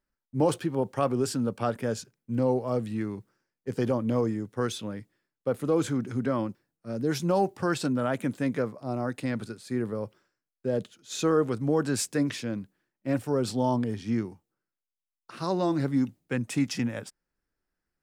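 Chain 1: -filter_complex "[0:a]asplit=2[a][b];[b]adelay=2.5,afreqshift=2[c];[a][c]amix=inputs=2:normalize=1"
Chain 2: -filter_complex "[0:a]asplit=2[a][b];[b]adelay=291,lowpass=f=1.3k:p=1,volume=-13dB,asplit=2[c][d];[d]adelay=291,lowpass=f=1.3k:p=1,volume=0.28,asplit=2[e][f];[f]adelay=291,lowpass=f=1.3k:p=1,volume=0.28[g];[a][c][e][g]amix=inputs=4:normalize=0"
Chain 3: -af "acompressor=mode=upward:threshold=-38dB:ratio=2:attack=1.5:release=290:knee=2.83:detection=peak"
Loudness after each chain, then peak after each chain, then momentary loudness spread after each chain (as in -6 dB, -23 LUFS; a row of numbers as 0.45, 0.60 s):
-32.5, -29.0, -29.5 LUFS; -15.0, -12.5, -12.5 dBFS; 11, 11, 11 LU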